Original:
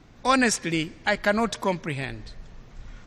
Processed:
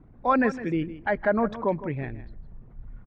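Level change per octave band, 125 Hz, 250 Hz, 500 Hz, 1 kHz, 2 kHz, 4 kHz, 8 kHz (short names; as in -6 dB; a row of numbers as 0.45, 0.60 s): 0.0 dB, 0.0 dB, +1.0 dB, -1.0 dB, -5.5 dB, under -15 dB, under -25 dB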